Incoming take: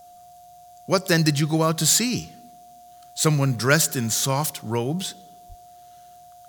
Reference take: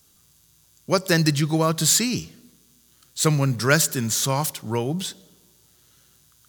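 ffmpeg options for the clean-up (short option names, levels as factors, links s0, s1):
-filter_complex "[0:a]bandreject=f=710:w=30,asplit=3[s0][s1][s2];[s0]afade=t=out:st=5.48:d=0.02[s3];[s1]highpass=f=140:w=0.5412,highpass=f=140:w=1.3066,afade=t=in:st=5.48:d=0.02,afade=t=out:st=5.6:d=0.02[s4];[s2]afade=t=in:st=5.6:d=0.02[s5];[s3][s4][s5]amix=inputs=3:normalize=0"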